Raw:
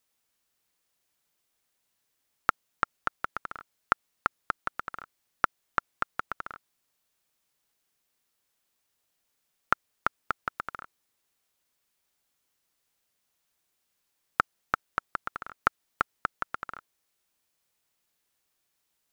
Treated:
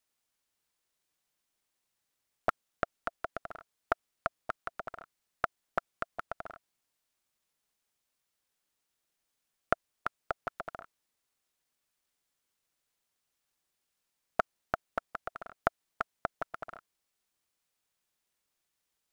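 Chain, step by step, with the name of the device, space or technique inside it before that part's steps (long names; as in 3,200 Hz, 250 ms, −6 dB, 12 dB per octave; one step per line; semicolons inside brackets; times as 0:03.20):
octave pedal (pitch-shifted copies added −12 semitones −3 dB)
level −7 dB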